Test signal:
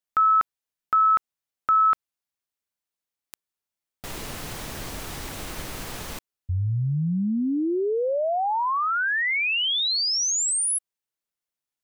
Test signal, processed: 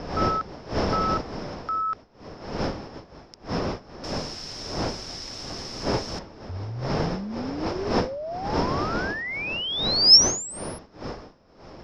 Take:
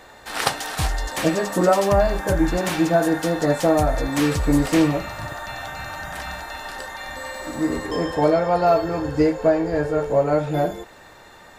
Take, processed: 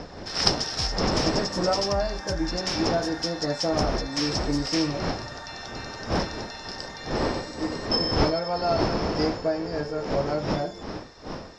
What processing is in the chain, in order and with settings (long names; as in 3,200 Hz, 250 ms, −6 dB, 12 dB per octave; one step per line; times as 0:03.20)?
wind on the microphone 600 Hz −23 dBFS
low-pass with resonance 5,300 Hz, resonance Q 16
level −8.5 dB